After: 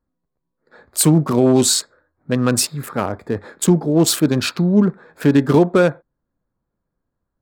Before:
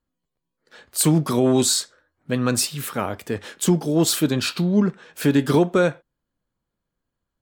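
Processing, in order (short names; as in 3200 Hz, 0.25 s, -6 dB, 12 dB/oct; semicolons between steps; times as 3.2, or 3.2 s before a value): Wiener smoothing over 15 samples; gain +4.5 dB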